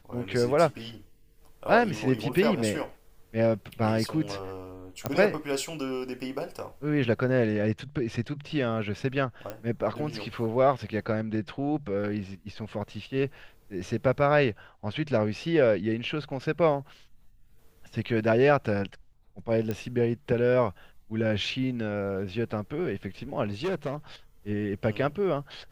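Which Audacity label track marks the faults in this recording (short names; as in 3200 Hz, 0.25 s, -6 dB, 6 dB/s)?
5.060000	5.060000	pop -13 dBFS
9.500000	9.500000	pop -21 dBFS
19.710000	19.710000	pop -18 dBFS
23.450000	23.950000	clipped -25.5 dBFS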